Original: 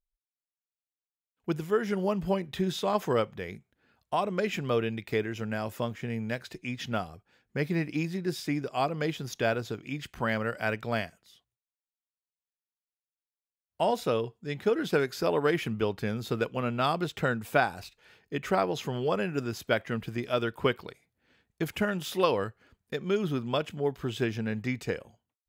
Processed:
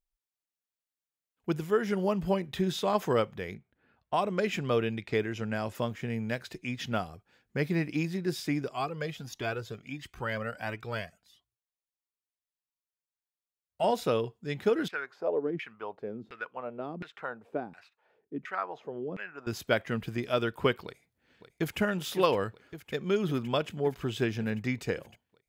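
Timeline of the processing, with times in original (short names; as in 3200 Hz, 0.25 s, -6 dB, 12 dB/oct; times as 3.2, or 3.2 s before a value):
3.54–5.75 low-pass opened by the level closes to 2600 Hz, open at -26.5 dBFS
8.73–13.84 cascading flanger rising 1.5 Hz
14.88–19.47 LFO band-pass saw down 1.4 Hz 200–2200 Hz
20.84–21.79 echo throw 0.56 s, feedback 80%, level -11.5 dB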